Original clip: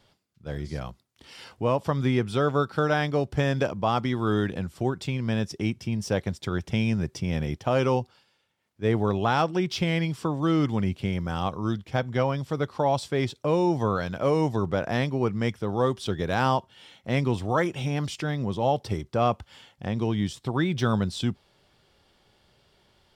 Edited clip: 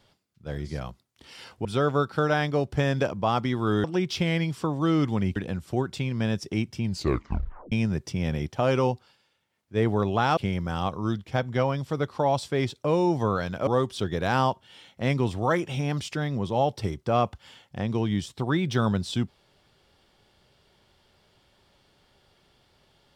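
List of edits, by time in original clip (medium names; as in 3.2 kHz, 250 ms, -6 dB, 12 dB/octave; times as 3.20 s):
1.65–2.25 s: delete
5.92 s: tape stop 0.88 s
9.45–10.97 s: move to 4.44 s
14.27–15.74 s: delete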